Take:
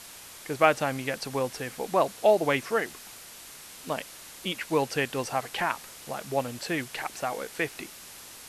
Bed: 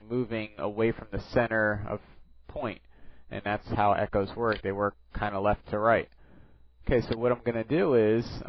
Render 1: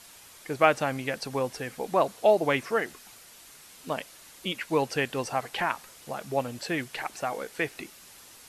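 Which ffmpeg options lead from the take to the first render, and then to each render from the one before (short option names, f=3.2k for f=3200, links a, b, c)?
-af "afftdn=nr=6:nf=-46"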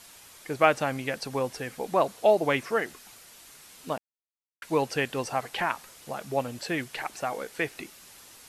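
-filter_complex "[0:a]asplit=3[a][b][c];[a]atrim=end=3.98,asetpts=PTS-STARTPTS,afade=t=out:st=3.976:d=0.004:c=hsin[d];[b]atrim=start=3.98:end=4.62,asetpts=PTS-STARTPTS,volume=0[e];[c]atrim=start=4.62,asetpts=PTS-STARTPTS,afade=t=in:d=0.004:c=hsin[f];[d][e][f]concat=n=3:v=0:a=1"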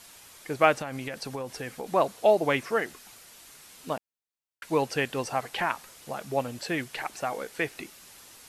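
-filter_complex "[0:a]asettb=1/sr,asplit=3[a][b][c];[a]atrim=end=0.774[d];[b]atrim=start=0.77:end=1.9,asetpts=PTS-STARTPTS,afade=t=in:d=0.004:c=qsin,afade=t=out:st=1.126:d=0.004:c=qsin,acompressor=threshold=-30dB:ratio=6:attack=3.2:release=140:knee=1:detection=peak[e];[c]atrim=start=1.896[f];[d][e]acrossfade=d=0.004:c1=hsin:c2=qsin[g];[g][f]acrossfade=d=0.004:c1=qsin:c2=hsin"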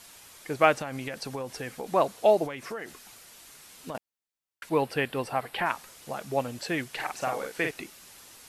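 -filter_complex "[0:a]asettb=1/sr,asplit=3[a][b][c];[a]atrim=end=2.454[d];[b]atrim=start=2.45:end=3.95,asetpts=PTS-STARTPTS,afade=t=in:d=0.004:c=qsin,afade=t=out:st=1.496:d=0.004:c=qsin,acompressor=threshold=-32dB:ratio=8:attack=3.2:release=140:knee=1:detection=peak[e];[c]atrim=start=3.946[f];[d][e]acrossfade=d=0.004:c1=hsin:c2=qsin[g];[g][f]acrossfade=d=0.004:c1=qsin:c2=hsin,asettb=1/sr,asplit=3[h][i][j];[h]atrim=end=4.694[k];[i]atrim=start=4.69:end=5.66,asetpts=PTS-STARTPTS,afade=t=in:d=0.004:c=qsin,afade=t=out:st=0.966:d=0.004:c=qsin,equalizer=f=6.4k:t=o:w=0.64:g=-12.5[l];[j]atrim=start=5.656[m];[k][l]acrossfade=d=0.004:c1=hsin:c2=qsin[n];[n][m]acrossfade=d=0.004:c1=qsin:c2=hsin,asettb=1/sr,asplit=3[o][p][q];[o]atrim=end=6.954[r];[p]atrim=start=6.95:end=7.71,asetpts=PTS-STARTPTS,afade=t=in:d=0.004:c=qsin,afade=t=out:st=0.756:d=0.004:c=qsin,asplit=2[s][t];[t]adelay=46,volume=-4dB[u];[s][u]amix=inputs=2:normalize=0,atrim=end_sample=33516[v];[q]atrim=start=7.706[w];[r][v]acrossfade=d=0.004:c1=hsin:c2=qsin[x];[x][w]acrossfade=d=0.004:c1=qsin:c2=hsin"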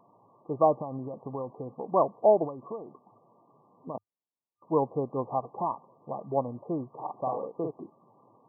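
-af "afftfilt=real='re*between(b*sr/4096,100,1200)':imag='im*between(b*sr/4096,100,1200)':win_size=4096:overlap=0.75"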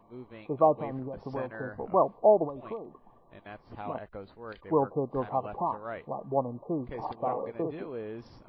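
-filter_complex "[1:a]volume=-15.5dB[a];[0:a][a]amix=inputs=2:normalize=0"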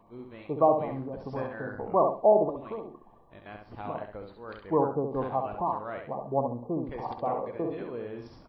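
-af "aecho=1:1:67|134|201:0.531|0.138|0.0359"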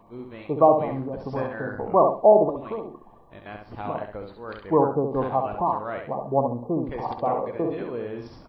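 -af "volume=5.5dB"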